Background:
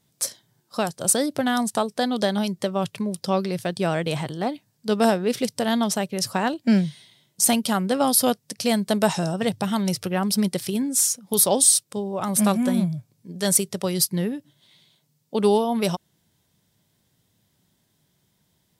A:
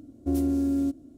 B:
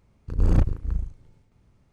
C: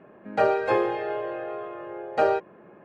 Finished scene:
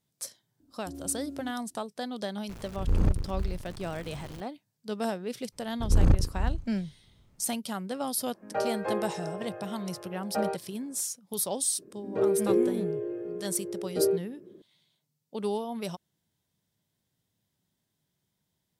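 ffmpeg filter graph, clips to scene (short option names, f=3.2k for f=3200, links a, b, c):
-filter_complex "[2:a]asplit=2[a][b];[3:a]asplit=2[c][d];[0:a]volume=-12dB[e];[a]aeval=exprs='val(0)+0.5*0.0211*sgn(val(0))':c=same[f];[c]highshelf=f=2.6k:g=-9.5[g];[d]lowshelf=f=550:t=q:w=3:g=13.5[h];[1:a]atrim=end=1.17,asetpts=PTS-STARTPTS,volume=-17dB,afade=t=in:d=0.004:c=hsin,afade=t=out:st=1.166:d=0.004:c=hsin,adelay=600[i];[f]atrim=end=1.92,asetpts=PTS-STARTPTS,volume=-5.5dB,afade=t=in:d=0.004:c=hsin,afade=t=out:st=1.916:d=0.004:c=hsin,adelay=2490[j];[b]atrim=end=1.92,asetpts=PTS-STARTPTS,volume=-1.5dB,afade=t=in:d=0.004:c=hsin,afade=t=out:st=1.916:d=0.004:c=hsin,adelay=5520[k];[g]atrim=end=2.84,asetpts=PTS-STARTPTS,volume=-8dB,afade=t=in:d=0.004:c=hsin,afade=t=out:st=2.836:d=0.004:c=hsin,adelay=8170[l];[h]atrim=end=2.84,asetpts=PTS-STARTPTS,volume=-17.5dB,afade=t=in:d=0.004:c=hsin,afade=t=out:st=2.836:d=0.004:c=hsin,adelay=519498S[m];[e][i][j][k][l][m]amix=inputs=6:normalize=0"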